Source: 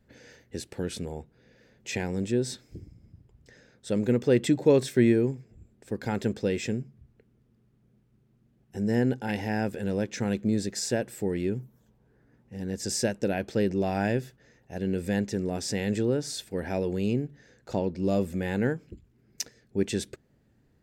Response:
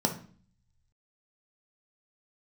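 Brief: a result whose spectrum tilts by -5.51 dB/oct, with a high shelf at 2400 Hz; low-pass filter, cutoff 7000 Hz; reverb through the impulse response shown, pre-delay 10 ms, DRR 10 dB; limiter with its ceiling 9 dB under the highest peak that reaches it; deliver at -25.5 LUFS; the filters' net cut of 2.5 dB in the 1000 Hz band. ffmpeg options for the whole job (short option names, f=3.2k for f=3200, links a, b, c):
-filter_complex "[0:a]lowpass=7k,equalizer=f=1k:t=o:g=-4.5,highshelf=f=2.4k:g=4,alimiter=limit=-18dB:level=0:latency=1,asplit=2[a][b];[1:a]atrim=start_sample=2205,adelay=10[c];[b][c]afir=irnorm=-1:irlink=0,volume=-18.5dB[d];[a][d]amix=inputs=2:normalize=0,volume=3.5dB"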